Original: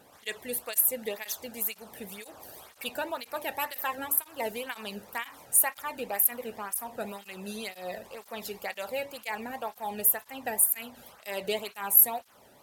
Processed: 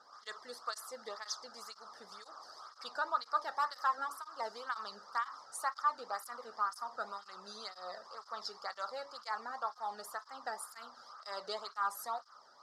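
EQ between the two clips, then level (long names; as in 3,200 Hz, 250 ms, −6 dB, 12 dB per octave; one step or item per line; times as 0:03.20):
pair of resonant band-passes 2,500 Hz, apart 2 octaves
high-frequency loss of the air 87 metres
+11.5 dB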